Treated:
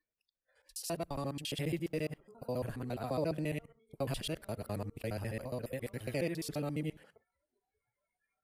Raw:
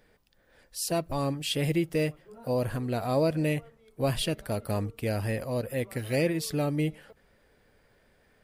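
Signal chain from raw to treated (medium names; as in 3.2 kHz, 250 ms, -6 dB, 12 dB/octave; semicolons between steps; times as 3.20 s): time reversed locally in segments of 69 ms; spectral noise reduction 25 dB; trim -8.5 dB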